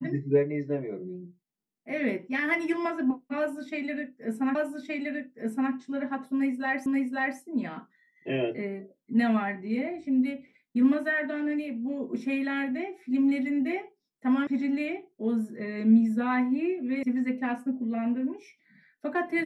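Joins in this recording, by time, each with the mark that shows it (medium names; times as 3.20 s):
4.55 s: repeat of the last 1.17 s
6.86 s: repeat of the last 0.53 s
14.47 s: sound stops dead
17.03 s: sound stops dead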